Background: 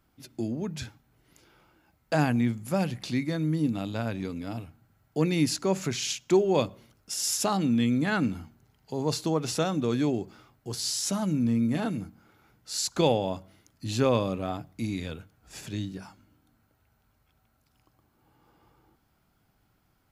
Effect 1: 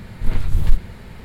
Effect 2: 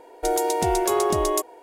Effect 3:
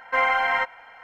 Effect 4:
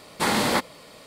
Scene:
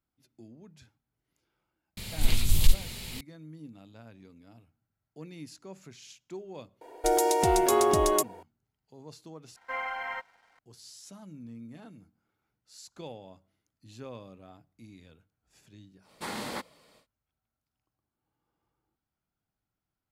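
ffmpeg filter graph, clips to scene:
ffmpeg -i bed.wav -i cue0.wav -i cue1.wav -i cue2.wav -i cue3.wav -filter_complex "[0:a]volume=-19.5dB[link_01];[1:a]aexciter=amount=8.5:drive=3.6:freq=2400[link_02];[3:a]aeval=exprs='sgn(val(0))*max(abs(val(0))-0.00251,0)':channel_layout=same[link_03];[link_01]asplit=2[link_04][link_05];[link_04]atrim=end=9.564[link_06];[link_03]atrim=end=1.03,asetpts=PTS-STARTPTS,volume=-13dB[link_07];[link_05]atrim=start=10.586[link_08];[link_02]atrim=end=1.24,asetpts=PTS-STARTPTS,volume=-6dB,afade=type=in:duration=0.004:curve=hsin,afade=type=out:start_time=1.236:duration=0.004:curve=hsin,adelay=1970[link_09];[2:a]atrim=end=1.62,asetpts=PTS-STARTPTS,volume=-1.5dB,afade=type=in:duration=0.004:curve=hsin,afade=type=out:start_time=1.616:duration=0.004:curve=hsin,adelay=6810[link_10];[4:a]atrim=end=1.06,asetpts=PTS-STARTPTS,volume=-14dB,afade=type=in:duration=0.1,afade=type=out:start_time=0.96:duration=0.1,adelay=16010[link_11];[link_06][link_07]acrossfade=duration=0.004:curve1=hsin:curve2=hsin[link_12];[link_12][link_08]acrossfade=duration=0.004:curve1=hsin:curve2=hsin[link_13];[link_13][link_09][link_10][link_11]amix=inputs=4:normalize=0" out.wav

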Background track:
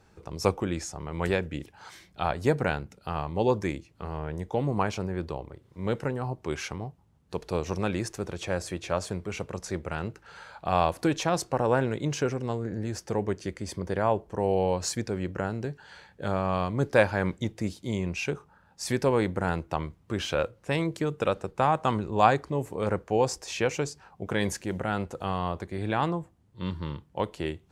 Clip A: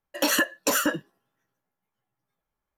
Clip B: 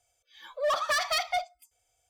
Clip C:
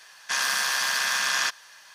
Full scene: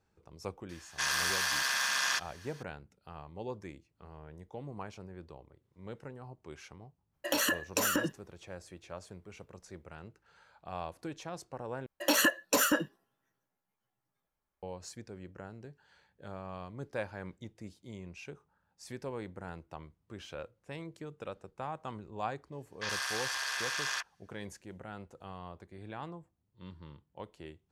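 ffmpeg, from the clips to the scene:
ffmpeg -i bed.wav -i cue0.wav -i cue1.wav -i cue2.wav -filter_complex "[3:a]asplit=2[link_01][link_02];[1:a]asplit=2[link_03][link_04];[0:a]volume=-16dB[link_05];[link_03]acompressor=threshold=-25dB:ratio=6:attack=3.2:release=140:knee=1:detection=peak[link_06];[link_02]afwtdn=0.0178[link_07];[link_05]asplit=2[link_08][link_09];[link_08]atrim=end=11.864[link_10];[link_04]atrim=end=2.77,asetpts=PTS-STARTPTS,volume=-3.5dB[link_11];[link_09]atrim=start=14.626[link_12];[link_01]atrim=end=1.94,asetpts=PTS-STARTPTS,volume=-6dB,afade=type=in:duration=0.004:curve=hsin,afade=type=out:start_time=1.936:duration=0.004:curve=hsin,adelay=690[link_13];[link_06]atrim=end=2.77,asetpts=PTS-STARTPTS,volume=-0.5dB,afade=type=in:duration=0.05,afade=type=out:start_time=2.72:duration=0.05,adelay=7100[link_14];[link_07]atrim=end=1.94,asetpts=PTS-STARTPTS,volume=-10dB,afade=type=in:duration=0.004:curve=hsin,afade=type=out:start_time=1.936:duration=0.004:curve=hsin,adelay=22520[link_15];[link_10][link_11]acrossfade=duration=0.004:curve1=hsin:curve2=hsin[link_16];[link_16][link_12]acrossfade=duration=0.004:curve1=hsin:curve2=hsin[link_17];[link_17][link_13][link_14][link_15]amix=inputs=4:normalize=0" out.wav

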